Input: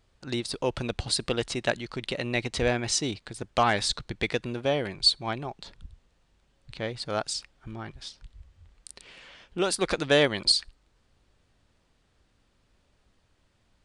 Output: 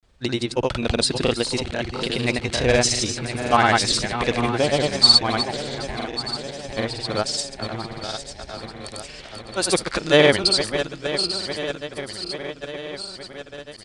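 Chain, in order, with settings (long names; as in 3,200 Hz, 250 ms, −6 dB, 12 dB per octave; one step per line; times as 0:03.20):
feedback delay that plays each chunk backwards 436 ms, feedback 79%, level −9.5 dB
granular cloud, pitch spread up and down by 0 semitones
level +7.5 dB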